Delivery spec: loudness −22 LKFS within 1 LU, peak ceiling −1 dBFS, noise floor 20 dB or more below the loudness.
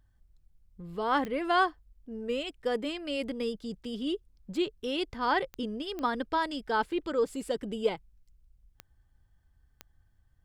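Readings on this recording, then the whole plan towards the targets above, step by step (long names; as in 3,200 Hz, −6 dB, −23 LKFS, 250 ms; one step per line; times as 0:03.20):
number of clicks 5; integrated loudness −32.0 LKFS; sample peak −14.0 dBFS; target loudness −22.0 LKFS
→ click removal
level +10 dB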